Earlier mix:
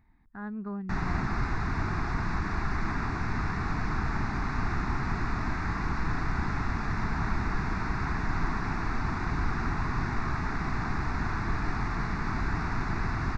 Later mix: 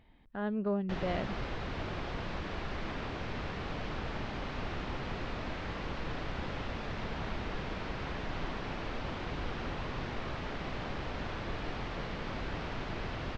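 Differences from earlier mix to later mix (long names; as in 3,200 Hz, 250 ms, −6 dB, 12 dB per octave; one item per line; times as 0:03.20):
background −10.0 dB
master: remove phaser with its sweep stopped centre 1,300 Hz, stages 4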